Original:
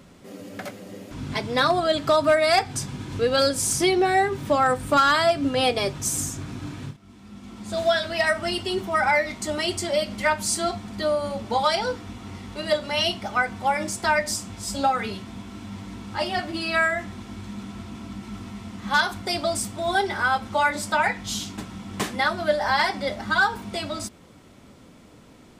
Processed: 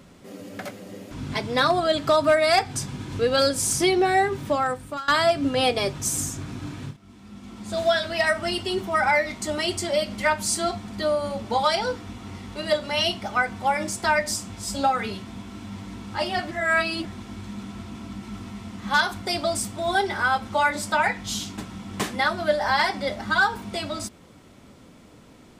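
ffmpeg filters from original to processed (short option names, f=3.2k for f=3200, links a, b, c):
-filter_complex "[0:a]asplit=4[a][b][c][d];[a]atrim=end=5.08,asetpts=PTS-STARTPTS,afade=t=out:st=4.34:d=0.74:silence=0.0794328[e];[b]atrim=start=5.08:end=16.512,asetpts=PTS-STARTPTS,afade=t=in:d=0.004:c=hsin:silence=0.0794328[f];[c]atrim=start=16.508:end=17.052,asetpts=PTS-STARTPTS,areverse[g];[d]atrim=start=17.048[h];[e][f]concat=n=2:v=0:a=1[i];[i][g]acrossfade=d=0.004:c1=hsin:c2=hsin[j];[j][h]acrossfade=d=0.004:c1=hsin:c2=hsin"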